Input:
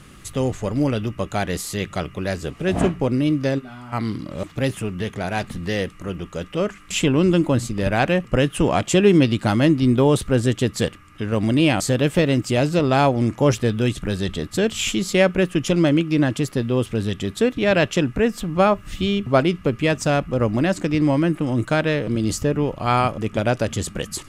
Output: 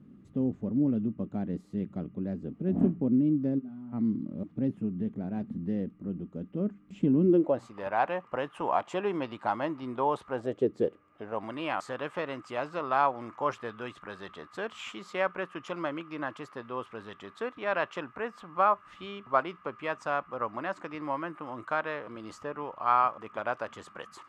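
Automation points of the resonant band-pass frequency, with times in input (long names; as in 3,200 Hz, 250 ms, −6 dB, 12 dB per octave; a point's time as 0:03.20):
resonant band-pass, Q 3
0:07.21 230 Hz
0:07.64 940 Hz
0:10.33 940 Hz
0:10.73 340 Hz
0:11.53 1,100 Hz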